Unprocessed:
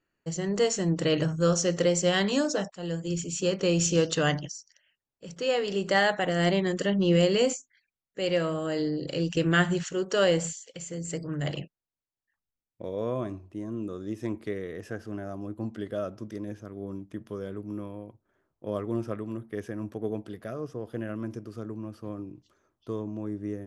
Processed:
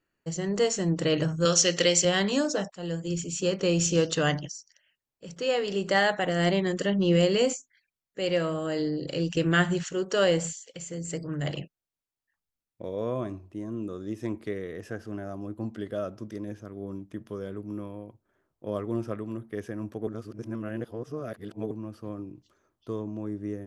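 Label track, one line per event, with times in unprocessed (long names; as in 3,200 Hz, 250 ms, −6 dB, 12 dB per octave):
1.450000	2.050000	meter weighting curve D
20.070000	21.710000	reverse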